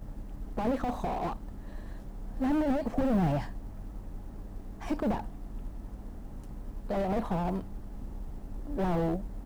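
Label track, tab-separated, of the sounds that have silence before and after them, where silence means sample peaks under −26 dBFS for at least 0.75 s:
2.410000	3.390000	sound
4.910000	5.200000	sound
6.900000	7.580000	sound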